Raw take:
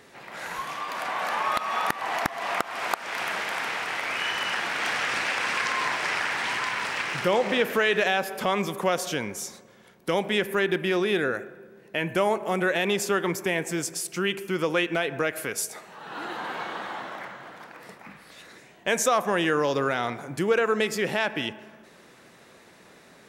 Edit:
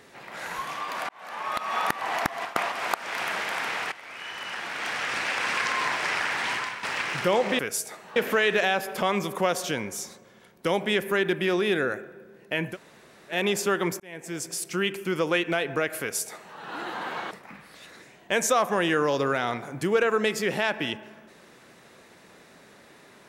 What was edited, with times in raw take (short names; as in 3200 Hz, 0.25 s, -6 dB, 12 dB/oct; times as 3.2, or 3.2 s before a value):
1.09–1.78 fade in
2.45–2.72 reverse
3.92–5.5 fade in, from -16.5 dB
6.53–6.83 fade out, to -11.5 dB
12.15–12.76 room tone, crossfade 0.10 s
13.43–14.04 fade in
15.43–16 copy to 7.59
16.74–17.87 cut